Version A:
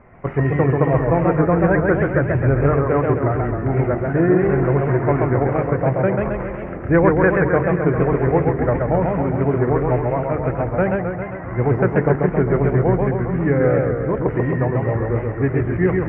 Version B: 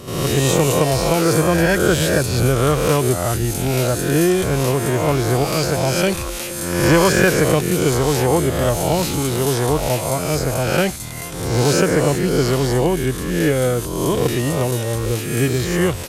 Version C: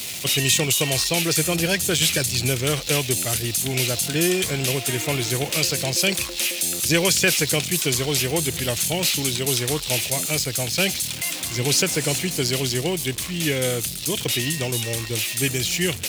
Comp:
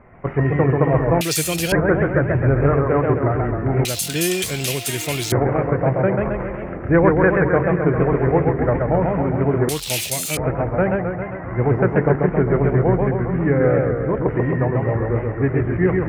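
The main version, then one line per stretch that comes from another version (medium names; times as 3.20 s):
A
1.21–1.72 s: from C
3.85–5.32 s: from C
9.69–10.37 s: from C
not used: B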